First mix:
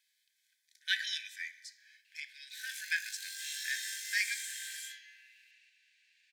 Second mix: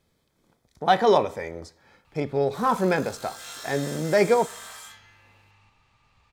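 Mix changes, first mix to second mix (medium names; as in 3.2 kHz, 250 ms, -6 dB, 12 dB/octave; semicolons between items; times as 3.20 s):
speech: send -8.5 dB; master: remove brick-wall FIR high-pass 1.5 kHz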